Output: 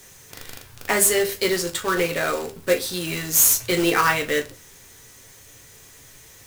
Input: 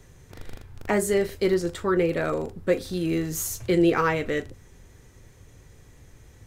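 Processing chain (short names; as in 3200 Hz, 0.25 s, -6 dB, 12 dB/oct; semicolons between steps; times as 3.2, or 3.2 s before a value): tilt +3.5 dB/oct; companded quantiser 4-bit; on a send: reverb RT60 0.30 s, pre-delay 5 ms, DRR 5 dB; on the sum: gain +3 dB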